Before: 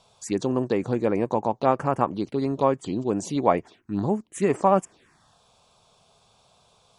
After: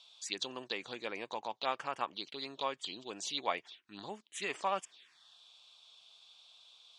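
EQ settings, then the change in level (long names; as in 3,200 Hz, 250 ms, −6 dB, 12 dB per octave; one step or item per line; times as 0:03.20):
resonant band-pass 3,500 Hz, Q 3
+8.0 dB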